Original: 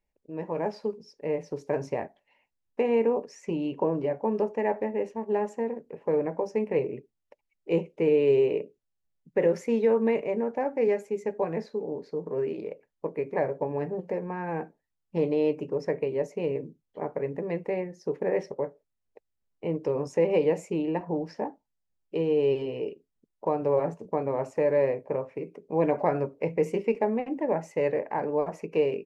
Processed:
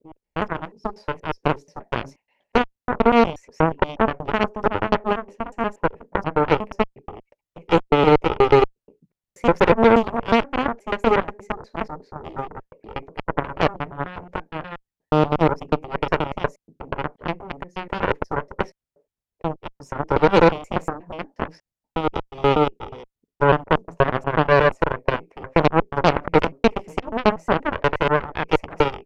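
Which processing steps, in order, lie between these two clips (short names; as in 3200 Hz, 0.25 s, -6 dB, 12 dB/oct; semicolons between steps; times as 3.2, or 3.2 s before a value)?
slices in reverse order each 0.12 s, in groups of 3; spectral gain 20.97–21.3, 440–1400 Hz -8 dB; added harmonics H 4 -8 dB, 6 -18 dB, 7 -14 dB, 8 -29 dB, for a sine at -11.5 dBFS; gain +6.5 dB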